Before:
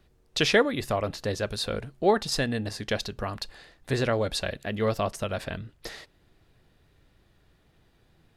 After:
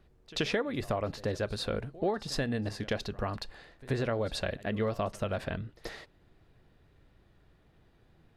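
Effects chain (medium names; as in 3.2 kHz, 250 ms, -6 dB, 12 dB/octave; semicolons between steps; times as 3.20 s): treble shelf 3.2 kHz -9.5 dB; compression 6:1, threshold -27 dBFS, peak gain reduction 11 dB; pre-echo 82 ms -20 dB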